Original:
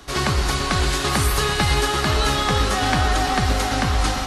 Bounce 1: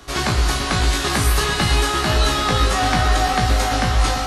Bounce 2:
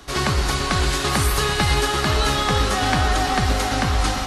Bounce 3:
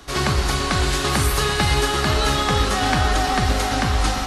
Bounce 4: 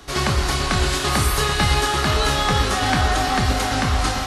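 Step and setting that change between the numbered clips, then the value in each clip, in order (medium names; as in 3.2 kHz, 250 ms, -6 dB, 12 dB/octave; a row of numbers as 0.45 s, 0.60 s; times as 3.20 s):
flutter echo, walls apart: 3 m, 11.5 m, 7.4 m, 4.7 m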